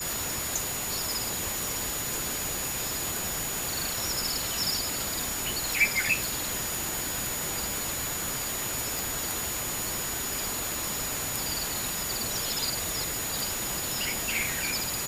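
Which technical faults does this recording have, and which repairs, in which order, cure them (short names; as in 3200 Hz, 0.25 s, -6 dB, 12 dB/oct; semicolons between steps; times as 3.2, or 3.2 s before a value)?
crackle 38/s -39 dBFS
tone 6900 Hz -35 dBFS
8.99 pop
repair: de-click; notch 6900 Hz, Q 30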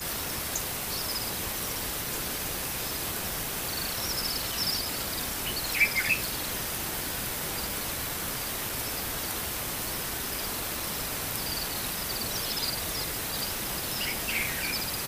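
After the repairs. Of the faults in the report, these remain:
none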